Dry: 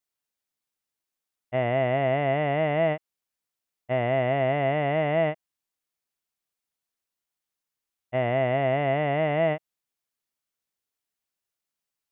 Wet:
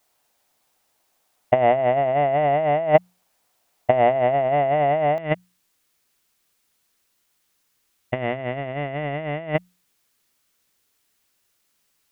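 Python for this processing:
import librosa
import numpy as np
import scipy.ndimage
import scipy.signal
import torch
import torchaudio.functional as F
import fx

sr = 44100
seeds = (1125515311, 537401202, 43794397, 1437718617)

y = fx.hum_notches(x, sr, base_hz=60, count=3)
y = fx.over_compress(y, sr, threshold_db=-31.0, ratio=-0.5)
y = fx.peak_eq(y, sr, hz=730.0, db=fx.steps((0.0, 9.5), (5.18, -3.0)), octaves=1.0)
y = F.gain(torch.from_numpy(y), 8.5).numpy()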